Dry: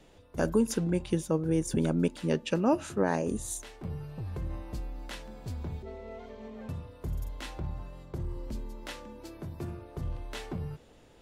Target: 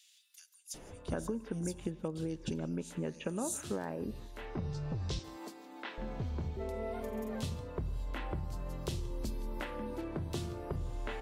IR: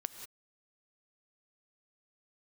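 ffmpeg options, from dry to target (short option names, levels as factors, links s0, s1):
-filter_complex "[0:a]acompressor=threshold=0.00891:ratio=10,asettb=1/sr,asplit=3[s0][s1][s2];[s0]atrim=end=4.454[s3];[s1]atrim=start=4.45:end=5.24,asetpts=PTS-STARTPTS,afade=t=in:d=0.004:c=qsin,afade=t=out:st=0.786:d=0.004:c=qsin,highpass=f=280:w=0.5412,highpass=f=280:w=1.3066,equalizer=f=560:t=q:w=4:g=-8,equalizer=f=3800:t=q:w=4:g=4,equalizer=f=5400:t=q:w=4:g=6,lowpass=f=7300:w=0.5412,lowpass=f=7300:w=1.3066[s4];[s2]atrim=start=5.236[s5];[s3][s4]acrossfade=d=0.004:c1=hsin:c2=qsin[s6];[s6][s5]acrossfade=d=0.004:c1=qsin:c2=hsin,acrossover=split=3000[s7][s8];[s7]adelay=740[s9];[s9][s8]amix=inputs=2:normalize=0,asplit=2[s10][s11];[1:a]atrim=start_sample=2205,asetrate=48510,aresample=44100[s12];[s11][s12]afir=irnorm=-1:irlink=0,volume=0.596[s13];[s10][s13]amix=inputs=2:normalize=0,volume=1.58"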